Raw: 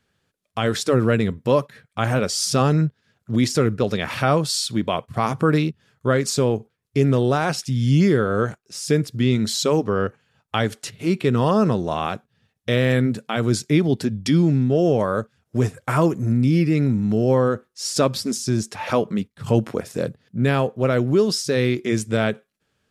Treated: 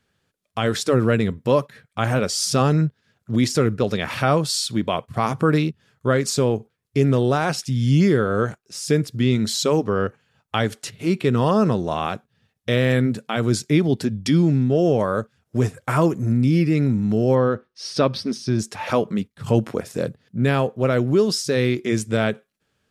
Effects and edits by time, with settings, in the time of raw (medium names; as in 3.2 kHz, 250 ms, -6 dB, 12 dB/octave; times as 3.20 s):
17.35–18.59 s: Savitzky-Golay filter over 15 samples